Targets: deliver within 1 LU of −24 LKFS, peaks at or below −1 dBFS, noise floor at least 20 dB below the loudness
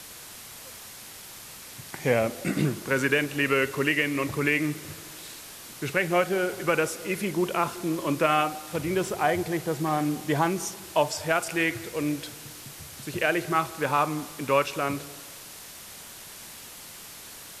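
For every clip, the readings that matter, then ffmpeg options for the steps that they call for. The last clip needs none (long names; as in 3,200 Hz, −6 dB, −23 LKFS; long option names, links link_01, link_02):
background noise floor −44 dBFS; target noise floor −47 dBFS; integrated loudness −26.5 LKFS; sample peak −9.0 dBFS; target loudness −24.0 LKFS
→ -af "afftdn=noise_reduction=6:noise_floor=-44"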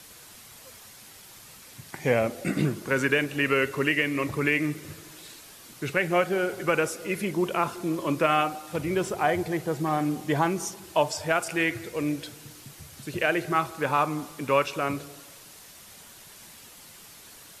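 background noise floor −49 dBFS; integrated loudness −26.5 LKFS; sample peak −9.0 dBFS; target loudness −24.0 LKFS
→ -af "volume=2.5dB"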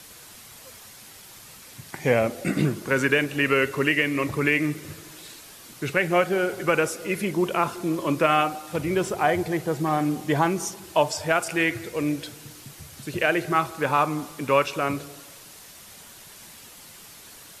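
integrated loudness −24.0 LKFS; sample peak −6.5 dBFS; background noise floor −46 dBFS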